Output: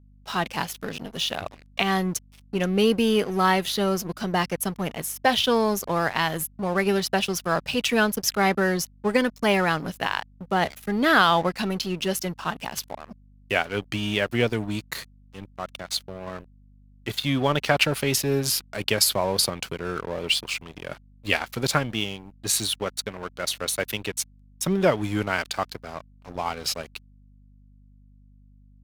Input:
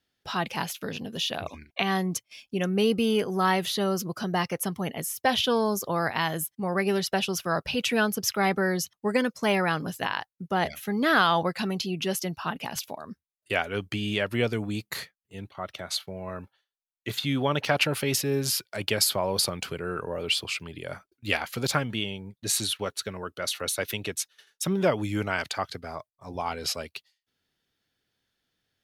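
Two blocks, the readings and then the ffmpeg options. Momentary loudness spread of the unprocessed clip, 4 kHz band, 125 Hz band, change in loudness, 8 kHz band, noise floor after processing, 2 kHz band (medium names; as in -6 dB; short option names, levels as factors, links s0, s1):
12 LU, +2.5 dB, +2.0 dB, +3.0 dB, +2.5 dB, -53 dBFS, +3.0 dB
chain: -af "aeval=exprs='sgn(val(0))*max(abs(val(0))-0.00891,0)':c=same,aeval=exprs='val(0)+0.00158*(sin(2*PI*50*n/s)+sin(2*PI*2*50*n/s)/2+sin(2*PI*3*50*n/s)/3+sin(2*PI*4*50*n/s)/4+sin(2*PI*5*50*n/s)/5)':c=same,volume=1.58"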